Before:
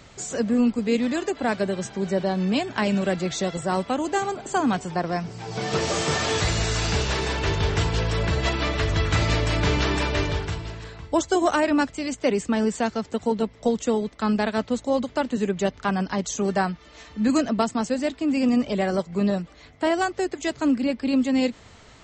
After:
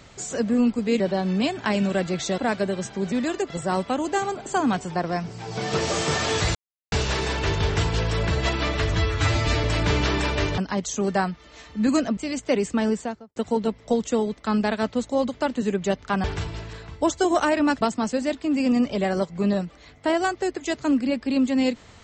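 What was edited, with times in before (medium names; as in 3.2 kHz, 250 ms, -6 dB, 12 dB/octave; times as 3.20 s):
1.00–1.38 s: swap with 2.12–3.50 s
6.55–6.92 s: mute
8.95–9.41 s: stretch 1.5×
10.35–11.92 s: swap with 15.99–17.58 s
12.59–13.11 s: studio fade out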